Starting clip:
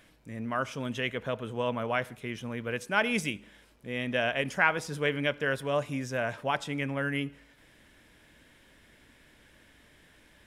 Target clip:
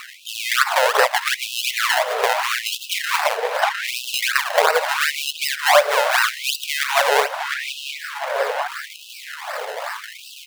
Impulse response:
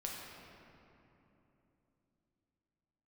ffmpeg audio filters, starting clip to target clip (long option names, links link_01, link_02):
-filter_complex "[0:a]acrusher=samples=26:mix=1:aa=0.000001:lfo=1:lforange=26:lforate=2.7,bass=frequency=250:gain=1,treble=frequency=4000:gain=-6,asplit=2[link_01][link_02];[link_02]adelay=706,lowpass=frequency=3200:poles=1,volume=-16dB,asplit=2[link_03][link_04];[link_04]adelay=706,lowpass=frequency=3200:poles=1,volume=0.43,asplit=2[link_05][link_06];[link_06]adelay=706,lowpass=frequency=3200:poles=1,volume=0.43,asplit=2[link_07][link_08];[link_08]adelay=706,lowpass=frequency=3200:poles=1,volume=0.43[link_09];[link_01][link_03][link_05][link_07][link_09]amix=inputs=5:normalize=0,asplit=2[link_10][link_11];[1:a]atrim=start_sample=2205,adelay=107[link_12];[link_11][link_12]afir=irnorm=-1:irlink=0,volume=-21dB[link_13];[link_10][link_13]amix=inputs=2:normalize=0,acompressor=threshold=-41dB:ratio=16,alimiter=level_in=35.5dB:limit=-1dB:release=50:level=0:latency=1,afftfilt=real='re*gte(b*sr/1024,400*pow(2600/400,0.5+0.5*sin(2*PI*0.8*pts/sr)))':imag='im*gte(b*sr/1024,400*pow(2600/400,0.5+0.5*sin(2*PI*0.8*pts/sr)))':win_size=1024:overlap=0.75"